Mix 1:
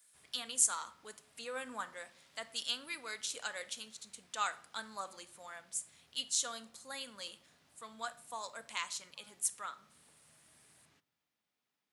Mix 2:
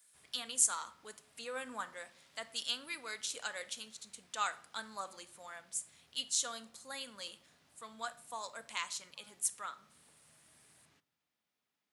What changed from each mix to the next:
none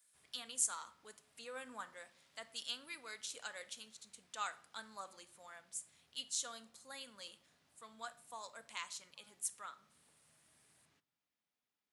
speech -6.0 dB; background -5.5 dB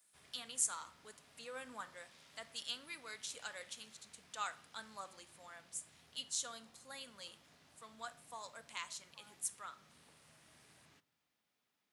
background +8.5 dB

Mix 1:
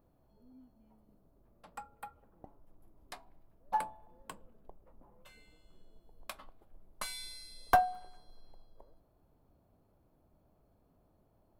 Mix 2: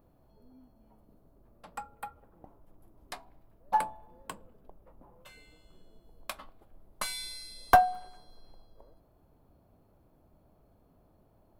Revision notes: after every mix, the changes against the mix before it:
first sound +5.5 dB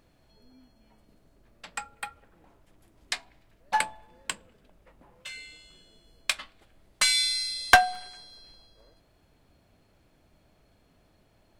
second sound -10.5 dB; master: add band shelf 3800 Hz +15.5 dB 2.8 oct

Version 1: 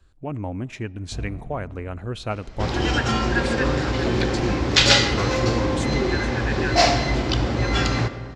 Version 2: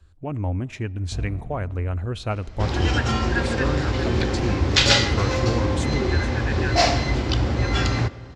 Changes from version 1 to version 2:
second sound: send -8.0 dB; master: add bell 83 Hz +11.5 dB 0.5 oct

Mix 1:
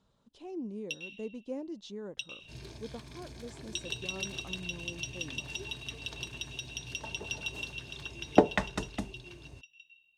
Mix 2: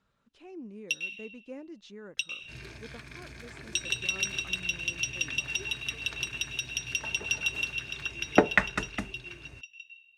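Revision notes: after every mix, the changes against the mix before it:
speech -4.5 dB; first sound: add tone controls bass -1 dB, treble +10 dB; master: add band shelf 1800 Hz +10.5 dB 1.3 oct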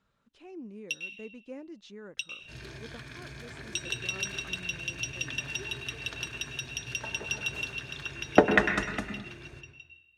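first sound -3.5 dB; second sound: send on

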